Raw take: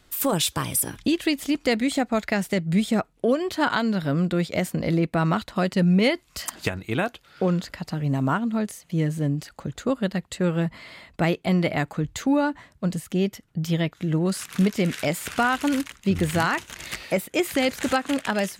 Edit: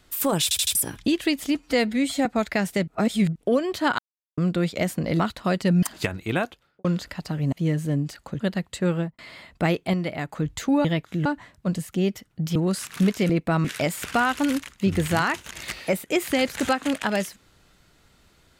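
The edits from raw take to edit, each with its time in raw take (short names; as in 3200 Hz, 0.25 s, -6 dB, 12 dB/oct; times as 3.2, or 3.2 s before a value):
0.43 stutter in place 0.08 s, 4 plays
1.55–2.02 stretch 1.5×
2.64–3.12 reverse
3.75–4.14 mute
4.96–5.31 move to 14.88
5.94–6.45 cut
7.03–7.47 studio fade out
8.15–8.85 cut
9.73–9.99 cut
10.52–10.77 studio fade out
11.52–11.91 gain -5.5 dB
13.73–14.14 move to 12.43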